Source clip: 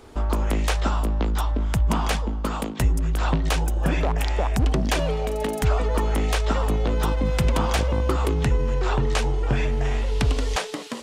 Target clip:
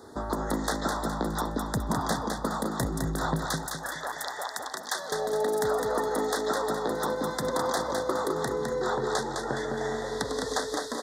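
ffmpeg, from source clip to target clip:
ffmpeg -i in.wav -af "asetnsamples=nb_out_samples=441:pad=0,asendcmd='3.45 highpass f 1100;5.12 highpass f 300',highpass=130,acompressor=threshold=-27dB:ratio=2,asuperstop=centerf=2600:order=12:qfactor=1.7,aecho=1:1:208|416|624|832|1040:0.596|0.238|0.0953|0.0381|0.0152" out.wav

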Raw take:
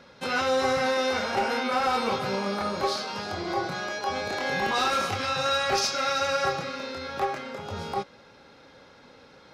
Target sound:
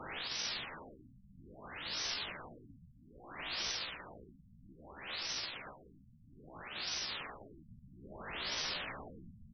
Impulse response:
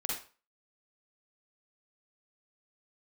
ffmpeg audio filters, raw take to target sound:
-af "lowshelf=frequency=170:gain=11.5,alimiter=level_in=13dB:limit=-24dB:level=0:latency=1:release=30,volume=-13dB,afreqshift=-85,aecho=1:1:74|148|222|296|370:0.178|0.0925|0.0481|0.025|0.013,aeval=exprs='(mod(251*val(0)+1,2)-1)/251':channel_layout=same,asetrate=60591,aresample=44100,atempo=0.727827,crystalizer=i=4:c=0,afftfilt=real='re*lt(b*sr/1024,230*pow(6200/230,0.5+0.5*sin(2*PI*0.61*pts/sr)))':imag='im*lt(b*sr/1024,230*pow(6200/230,0.5+0.5*sin(2*PI*0.61*pts/sr)))':win_size=1024:overlap=0.75,volume=11dB"

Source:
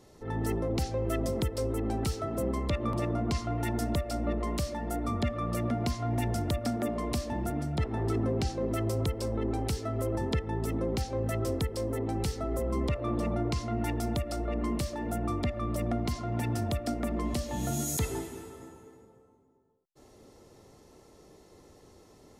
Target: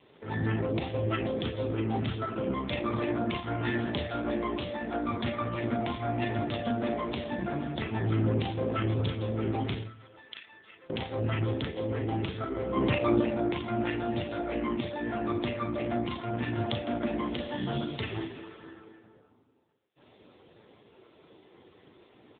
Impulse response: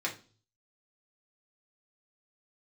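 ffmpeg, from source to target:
-filter_complex "[0:a]asettb=1/sr,asplit=3[link_01][link_02][link_03];[link_01]atrim=end=9.834[link_04];[link_02]atrim=start=9.83:end=10.9,asetpts=PTS-STARTPTS,afade=type=in:duration=0.004:curve=qsin,afade=type=out:start_time=1.066:duration=0.004:curve=qsin,aderivative[link_05];[link_03]atrim=start=10.896[link_06];[link_04][link_05]acrossfade=duration=0.004:curve1=hsin:curve2=qsin[link_07];[link_07][link_06]acrossfade=duration=0.004:curve1=qsin:curve2=hsin,bandreject=frequency=90.29:width_type=h:width=4,bandreject=frequency=180.58:width_type=h:width=4,bandreject=frequency=270.87:width_type=h:width=4,bandreject=frequency=361.16:width_type=h:width=4,bandreject=frequency=451.45:width_type=h:width=4,bandreject=frequency=541.74:width_type=h:width=4,bandreject=frequency=632.03:width_type=h:width=4,bandreject=frequency=722.32:width_type=h:width=4,bandreject=frequency=812.61:width_type=h:width=4,asplit=3[link_08][link_09][link_10];[link_08]afade=type=out:start_time=12.75:duration=0.02[link_11];[link_09]acontrast=28,afade=type=in:start_time=12.75:duration=0.02,afade=type=out:start_time=13.2:duration=0.02[link_12];[link_10]afade=type=in:start_time=13.2:duration=0.02[link_13];[link_11][link_12][link_13]amix=inputs=3:normalize=0,crystalizer=i=7:c=0,asplit=3[link_14][link_15][link_16];[link_14]afade=type=out:start_time=3.54:duration=0.02[link_17];[link_15]asplit=2[link_18][link_19];[link_19]adelay=25,volume=-5dB[link_20];[link_18][link_20]amix=inputs=2:normalize=0,afade=type=in:start_time=3.54:duration=0.02,afade=type=out:start_time=4.17:duration=0.02[link_21];[link_16]afade=type=in:start_time=4.17:duration=0.02[link_22];[link_17][link_21][link_22]amix=inputs=3:normalize=0,aecho=1:1:37|63:0.596|0.178,asplit=2[link_23][link_24];[1:a]atrim=start_sample=2205,adelay=58[link_25];[link_24][link_25]afir=irnorm=-1:irlink=0,volume=-17.5dB[link_26];[link_23][link_26]amix=inputs=2:normalize=0" -ar 8000 -c:a libopencore_amrnb -b:a 5900

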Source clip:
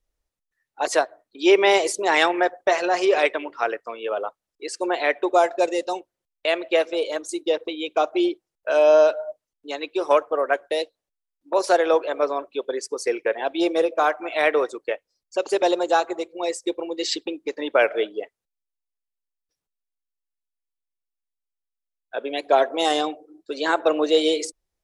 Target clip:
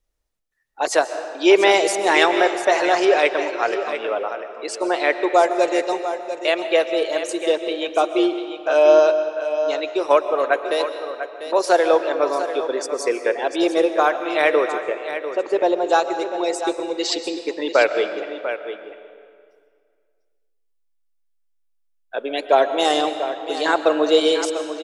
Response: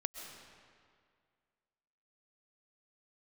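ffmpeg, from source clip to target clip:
-filter_complex "[0:a]asettb=1/sr,asplit=3[link_01][link_02][link_03];[link_01]atrim=end=14.834[link_04];[link_02]atrim=start=14.83:end=15.87,asetpts=PTS-STARTPTS,afade=type=in:duration=0.004:curve=qsin,afade=type=out:start_time=1.036:duration=0.004:curve=qsin,lowpass=frequency=1300:poles=1[link_05];[link_03]atrim=start=15.866[link_06];[link_04][link_05]acrossfade=duration=0.004:curve1=hsin:curve2=qsin[link_07];[link_07][link_06]acrossfade=duration=0.004:curve1=qsin:curve2=hsin,aecho=1:1:695:0.299,asplit=2[link_08][link_09];[1:a]atrim=start_sample=2205[link_10];[link_09][link_10]afir=irnorm=-1:irlink=0,volume=2dB[link_11];[link_08][link_11]amix=inputs=2:normalize=0,volume=-4dB"

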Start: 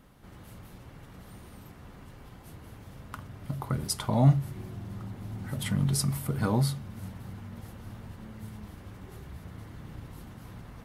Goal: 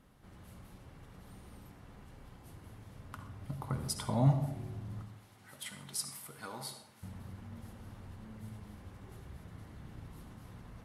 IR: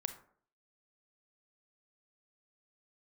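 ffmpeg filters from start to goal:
-filter_complex "[0:a]asettb=1/sr,asplit=3[link_01][link_02][link_03];[link_01]atrim=end=5.024[link_04];[link_02]atrim=start=5.02:end=7.03,asetpts=PTS-STARTPTS,afade=type=in:duration=0.004:curve=qsin,afade=type=out:start_time=2.006:duration=0.004:curve=qsin,highpass=frequency=1500:poles=1[link_05];[link_03]atrim=start=7.026[link_06];[link_04][link_05]acrossfade=duration=0.004:curve1=hsin:curve2=qsin[link_07];[link_07][link_06]acrossfade=duration=0.004:curve1=qsin:curve2=hsin[link_08];[1:a]atrim=start_sample=2205,asetrate=23814,aresample=44100[link_09];[link_08][link_09]afir=irnorm=-1:irlink=0,volume=-8.5dB"

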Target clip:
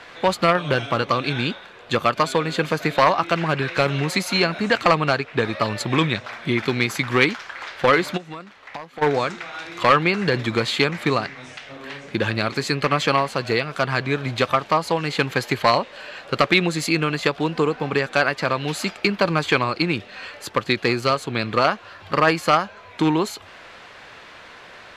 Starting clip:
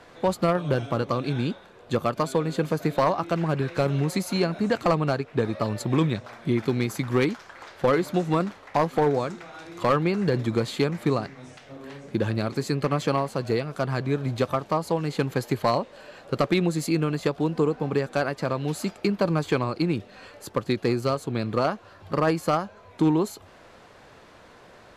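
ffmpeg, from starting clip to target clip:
ffmpeg -i in.wav -filter_complex "[0:a]equalizer=frequency=2500:width=0.43:gain=13.5,asplit=3[link_01][link_02][link_03];[link_01]afade=type=out:start_time=8.16:duration=0.02[link_04];[link_02]acompressor=threshold=-36dB:ratio=4,afade=type=in:start_time=8.16:duration=0.02,afade=type=out:start_time=9.01:duration=0.02[link_05];[link_03]afade=type=in:start_time=9.01:duration=0.02[link_06];[link_04][link_05][link_06]amix=inputs=3:normalize=0" out.wav

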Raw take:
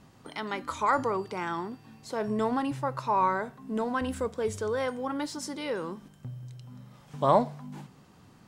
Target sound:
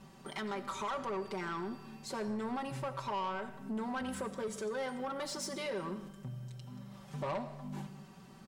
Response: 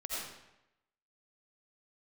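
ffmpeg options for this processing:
-filter_complex "[0:a]aecho=1:1:5.2:0.92,acompressor=threshold=-32dB:ratio=2.5,asoftclip=type=tanh:threshold=-30dB,asplit=2[link_01][link_02];[1:a]atrim=start_sample=2205[link_03];[link_02][link_03]afir=irnorm=-1:irlink=0,volume=-12.5dB[link_04];[link_01][link_04]amix=inputs=2:normalize=0,volume=-3dB"

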